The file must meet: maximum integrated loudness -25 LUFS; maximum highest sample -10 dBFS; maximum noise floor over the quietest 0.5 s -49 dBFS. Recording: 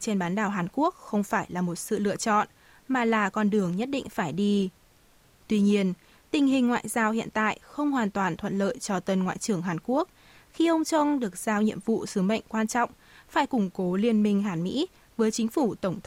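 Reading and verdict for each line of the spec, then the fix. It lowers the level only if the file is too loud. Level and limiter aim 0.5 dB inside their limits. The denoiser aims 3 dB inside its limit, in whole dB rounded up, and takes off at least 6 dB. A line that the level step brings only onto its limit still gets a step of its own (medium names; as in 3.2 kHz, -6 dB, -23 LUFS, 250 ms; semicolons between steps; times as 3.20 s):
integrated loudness -27.0 LUFS: pass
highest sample -12.5 dBFS: pass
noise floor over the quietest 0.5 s -59 dBFS: pass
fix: none needed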